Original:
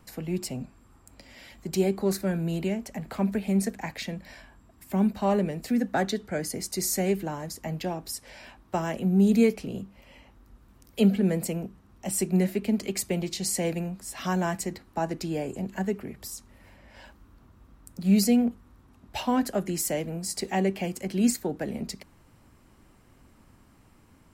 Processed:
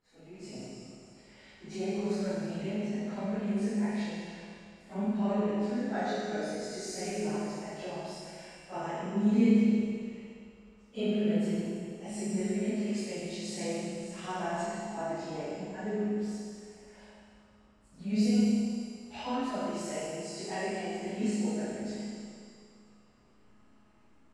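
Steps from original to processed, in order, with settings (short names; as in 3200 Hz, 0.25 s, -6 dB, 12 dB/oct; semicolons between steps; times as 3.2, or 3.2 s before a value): phase scrambler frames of 0.1 s; LPF 8000 Hz 24 dB/oct; tone controls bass -6 dB, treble -5 dB; resonator 210 Hz, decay 1.1 s, mix 80%; Schroeder reverb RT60 2.3 s, combs from 26 ms, DRR -4 dB; AGC gain up to 9.5 dB; gain -6.5 dB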